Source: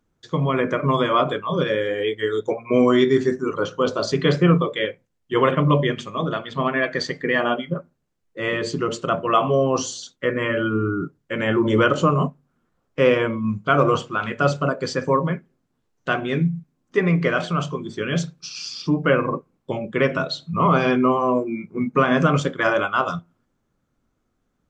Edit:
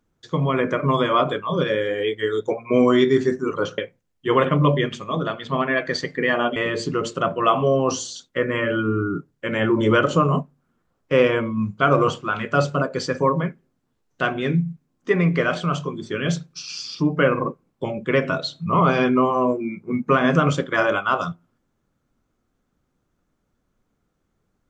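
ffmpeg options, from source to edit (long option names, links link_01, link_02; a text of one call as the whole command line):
ffmpeg -i in.wav -filter_complex "[0:a]asplit=3[link_01][link_02][link_03];[link_01]atrim=end=3.782[link_04];[link_02]atrim=start=4.838:end=7.622[link_05];[link_03]atrim=start=8.428[link_06];[link_04][link_05]acrossfade=duration=0.004:curve1=hsin:curve2=hsin[link_07];[link_07][link_06]acrossfade=duration=0.004:curve1=hsin:curve2=hsin" out.wav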